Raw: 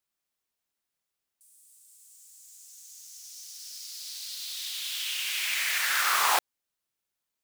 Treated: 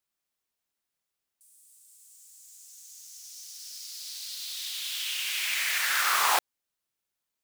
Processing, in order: nothing audible

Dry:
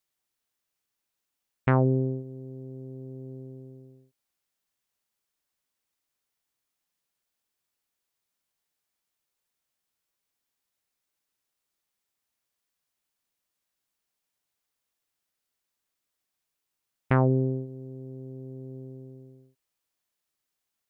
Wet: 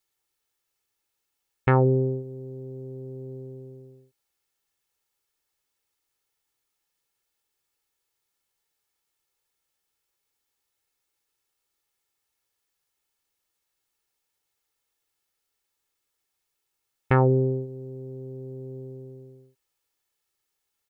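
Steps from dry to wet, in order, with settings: comb 2.3 ms, depth 48%; gain +2.5 dB

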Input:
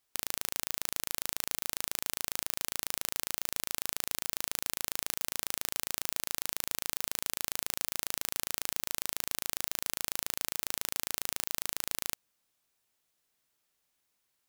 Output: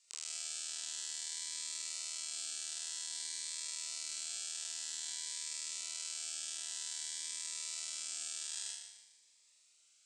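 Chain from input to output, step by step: regenerating reverse delay 0.107 s, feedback 63%, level -11.5 dB; wide varispeed 1.44×; elliptic low-pass 8100 Hz, stop band 50 dB; tilt +4.5 dB/oct; notch 1100 Hz, Q 6.3; flutter echo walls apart 6.8 m, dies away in 0.83 s; limiter -27 dBFS, peak gain reduction 19.5 dB; low shelf 200 Hz -7.5 dB; cascading phaser rising 0.52 Hz; gain +3 dB

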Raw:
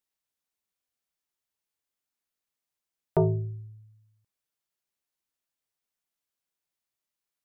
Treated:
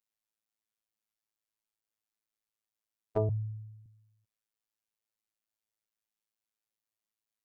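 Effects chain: robotiser 108 Hz; 3.29–3.86 elliptic band-stop 130–900 Hz; gain -3 dB

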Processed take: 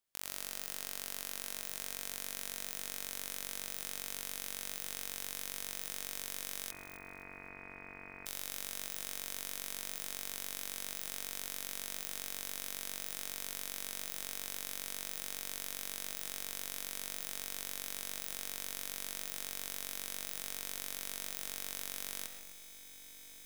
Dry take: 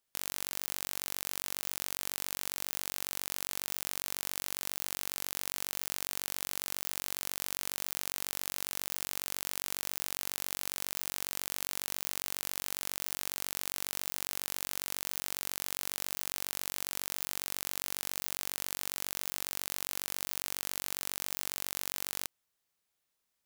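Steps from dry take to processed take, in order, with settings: on a send: diffused feedback echo 1.352 s, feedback 78%, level -14.5 dB; on the sum: digital reverb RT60 0.54 s, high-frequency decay 0.45×, pre-delay 75 ms, DRR 7.5 dB; 6.71–8.26 inverted band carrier 2500 Hz; lo-fi delay 0.258 s, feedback 35%, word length 8-bit, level -14.5 dB; gain -5 dB

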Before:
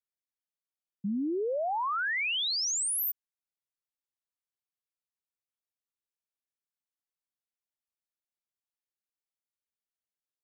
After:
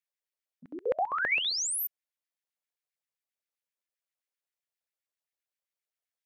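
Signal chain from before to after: granular stretch 0.6×, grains 23 ms; LFO high-pass square 7.6 Hz 540–1900 Hz

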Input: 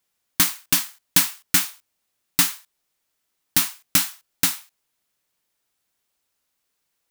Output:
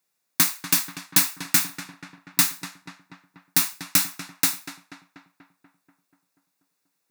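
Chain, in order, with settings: HPF 120 Hz 24 dB/oct; notch 3100 Hz, Q 6.1; darkening echo 0.242 s, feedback 64%, low-pass 2800 Hz, level -10 dB; gain -1 dB

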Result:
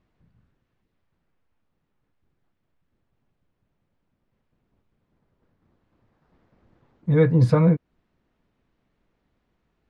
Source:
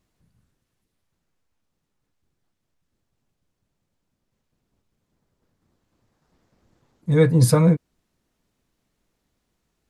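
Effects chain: LPF 2600 Hz 12 dB/oct; in parallel at +0.5 dB: compressor, threshold -25 dBFS, peak gain reduction 13.5 dB; on the sum: gain -3.5 dB

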